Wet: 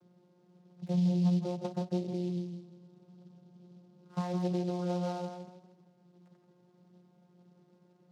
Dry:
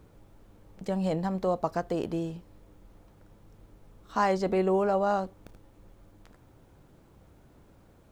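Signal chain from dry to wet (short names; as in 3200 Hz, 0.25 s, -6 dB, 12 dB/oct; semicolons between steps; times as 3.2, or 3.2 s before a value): 0.92–4.2 tilt -2.5 dB/oct; compressor, threshold -27 dBFS, peak gain reduction 8 dB; vocoder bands 16, saw 178 Hz; tape echo 0.164 s, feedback 33%, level -5 dB, low-pass 1700 Hz; noise-modulated delay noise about 3800 Hz, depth 0.031 ms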